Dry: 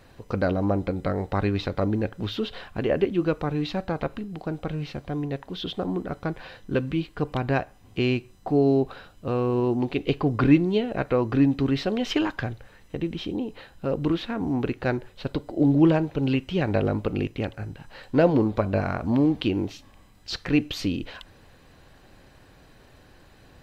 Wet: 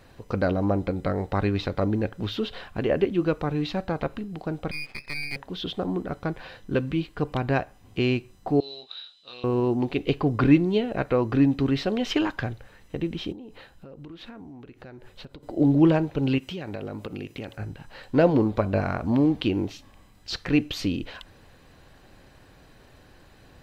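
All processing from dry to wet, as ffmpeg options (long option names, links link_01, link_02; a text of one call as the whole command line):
ffmpeg -i in.wav -filter_complex "[0:a]asettb=1/sr,asplit=3[link_01][link_02][link_03];[link_01]atrim=end=4.714[link_04];[link_02]atrim=start=4.71:end=5.36,asetpts=PTS-STARTPTS,afade=type=in:duration=0.004:curve=qsin,afade=type=out:start_time=0.646:duration=0.004:curve=qsin,lowpass=frequency=2200:width_type=q:width=0.5098,lowpass=frequency=2200:width_type=q:width=0.6013,lowpass=frequency=2200:width_type=q:width=0.9,lowpass=frequency=2200:width_type=q:width=2.563,afreqshift=-2600,aeval=exprs='max(val(0),0)':channel_layout=same[link_05];[link_03]atrim=start=5.356[link_06];[link_04][link_05]acrossfade=duration=0.004:curve1=hsin:curve2=qsin[link_07];[link_07][link_06]acrossfade=duration=0.004:curve1=qsin:curve2=hsin,asettb=1/sr,asplit=3[link_08][link_09][link_10];[link_08]atrim=end=8.604[link_11];[link_09]atrim=start=8.6:end=9.44,asetpts=PTS-STARTPTS,afade=type=in:duration=0.004:curve=qsin,afade=type=out:start_time=0.836:duration=0.004:curve=qsin,lowpass=frequency=3800:width_type=q:width=11,aderivative,asplit=2[link_12][link_13];[link_13]adelay=24,volume=-5dB[link_14];[link_12][link_14]amix=inputs=2:normalize=0,atrim=end_sample=37044[link_15];[link_10]atrim=start=9.436[link_16];[link_11][link_15]acrossfade=duration=0.004:curve1=hsin:curve2=qsin[link_17];[link_17][link_16]acrossfade=duration=0.004:curve1=qsin:curve2=hsin,asettb=1/sr,asplit=3[link_18][link_19][link_20];[link_18]atrim=end=13.324[link_21];[link_19]atrim=start=13.32:end=15.43,asetpts=PTS-STARTPTS,afade=type=in:duration=0.004:curve=qsin,afade=type=out:start_time=2.106:duration=0.004:curve=qsin,acompressor=threshold=-38dB:ratio=10:attack=3.2:release=140:knee=1:detection=peak,tremolo=f=1.1:d=0.29[link_22];[link_20]atrim=start=15.426[link_23];[link_21][link_22]acrossfade=duration=0.004:curve1=hsin:curve2=qsin[link_24];[link_24][link_23]acrossfade=duration=0.004:curve1=qsin:curve2=hsin,asettb=1/sr,asplit=3[link_25][link_26][link_27];[link_25]atrim=end=16.384[link_28];[link_26]atrim=start=16.38:end=17.57,asetpts=PTS-STARTPTS,afade=type=in:duration=0.004:curve=qsin,afade=type=out:start_time=1.186:duration=0.004:curve=qsin,highpass=frequency=120:poles=1,highshelf=frequency=5000:gain=8,acompressor=threshold=-31dB:ratio=5:attack=3.2:release=140:knee=1:detection=peak[link_29];[link_27]atrim=start=17.566[link_30];[link_28][link_29]acrossfade=duration=0.004:curve1=hsin:curve2=qsin[link_31];[link_31][link_30]acrossfade=duration=0.004:curve1=qsin:curve2=hsin" out.wav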